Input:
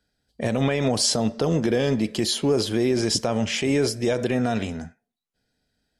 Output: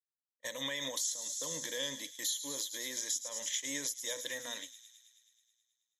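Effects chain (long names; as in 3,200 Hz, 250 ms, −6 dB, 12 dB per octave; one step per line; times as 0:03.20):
mains-hum notches 50/100/150/200/250 Hz
noise gate −25 dBFS, range −38 dB
first difference
on a send: delay with a high-pass on its return 107 ms, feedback 71%, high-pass 3,900 Hz, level −11 dB
on the sum: downward compressor 6 to 1, threshold −35 dBFS, peak gain reduction 14 dB
EQ curve with evenly spaced ripples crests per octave 1.1, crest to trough 16 dB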